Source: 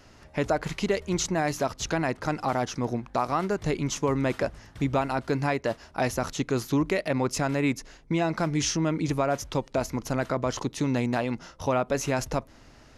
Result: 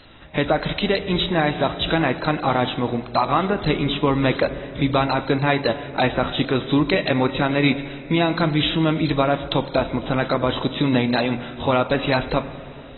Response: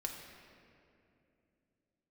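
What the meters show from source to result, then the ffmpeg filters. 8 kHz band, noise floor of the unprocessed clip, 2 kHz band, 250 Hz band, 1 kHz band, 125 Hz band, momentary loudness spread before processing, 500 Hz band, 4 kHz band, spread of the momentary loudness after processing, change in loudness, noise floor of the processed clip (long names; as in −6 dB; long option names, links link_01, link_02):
below −40 dB, −53 dBFS, +8.5 dB, +7.0 dB, +7.0 dB, +6.0 dB, 5 LU, +6.5 dB, +12.0 dB, 5 LU, +7.0 dB, −37 dBFS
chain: -filter_complex "[0:a]lowpass=frequency=4300:width_type=q:width=7.4,asplit=2[link_01][link_02];[1:a]atrim=start_sample=2205[link_03];[link_02][link_03]afir=irnorm=-1:irlink=0,volume=-4dB[link_04];[link_01][link_04]amix=inputs=2:normalize=0,volume=2dB" -ar 24000 -c:a aac -b:a 16k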